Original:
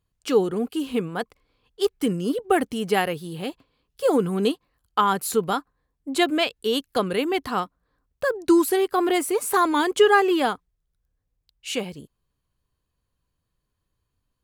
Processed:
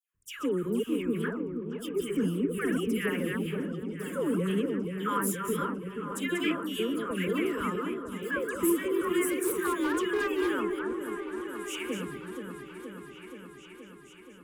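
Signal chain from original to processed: chunks repeated in reverse 174 ms, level -7 dB; peak limiter -14.5 dBFS, peak gain reduction 10.5 dB; static phaser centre 1.8 kHz, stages 4; phase dispersion lows, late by 147 ms, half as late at 1.5 kHz; 9.28–10.49 s: overload inside the chain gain 23.5 dB; delay with an opening low-pass 475 ms, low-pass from 750 Hz, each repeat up 1 oct, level -6 dB; trim -2.5 dB

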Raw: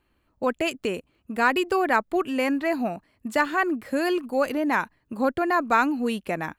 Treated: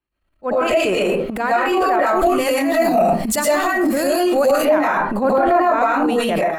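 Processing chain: reverberation RT60 0.35 s, pre-delay 75 ms, DRR -9.5 dB; transient shaper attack -11 dB, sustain +11 dB; 2.06–4.65 s: tone controls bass +5 dB, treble +13 dB; peak limiter -22.5 dBFS, peak gain reduction 23 dB; level rider gain up to 9 dB; dynamic bell 650 Hz, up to +7 dB, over -36 dBFS, Q 0.79; three bands expanded up and down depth 40%

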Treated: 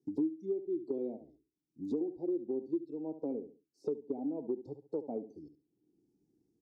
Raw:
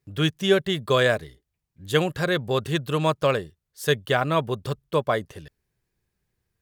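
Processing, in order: low-pass that closes with the level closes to 1.6 kHz, closed at -21 dBFS; elliptic band-stop 570–5500 Hz, stop band 40 dB; in parallel at +3 dB: compression, threshold -29 dBFS, peak gain reduction 13.5 dB; on the sum: spectral noise reduction 15 dB; vowel filter u; peaking EQ 75 Hz -10 dB 1.1 oct; on a send: feedback delay 69 ms, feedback 22%, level -13 dB; on the sum: dynamic bell 340 Hz, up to +6 dB, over -48 dBFS, Q 4.4; three bands compressed up and down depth 100%

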